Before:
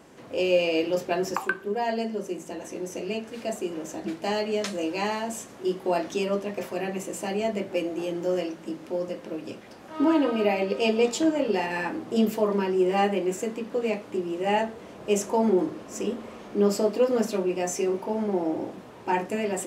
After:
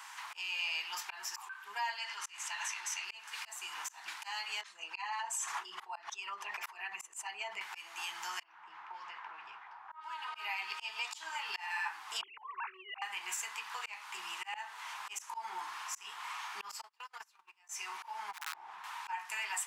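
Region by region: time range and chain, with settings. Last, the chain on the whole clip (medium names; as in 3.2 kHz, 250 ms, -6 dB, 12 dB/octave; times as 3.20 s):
1.97–3.05 s: band-pass filter 2.5 kHz, Q 0.52 + level flattener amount 70%
4.61–7.61 s: resonances exaggerated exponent 1.5 + swell ahead of each attack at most 47 dB/s
8.43–10.35 s: level-controlled noise filter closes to 700 Hz, open at -18 dBFS + compression, threshold -33 dBFS
12.21–13.02 s: formants replaced by sine waves + compression 3:1, threshold -28 dBFS
16.81–17.69 s: gate -21 dBFS, range -39 dB + compression 10:1, threshold -33 dBFS
18.31–18.84 s: low-pass 1 kHz 6 dB/octave + integer overflow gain 22 dB + compression 2:1, threshold -35 dBFS
whole clip: elliptic high-pass 900 Hz, stop band 40 dB; slow attack 370 ms; compression 2.5:1, threshold -49 dBFS; trim +9.5 dB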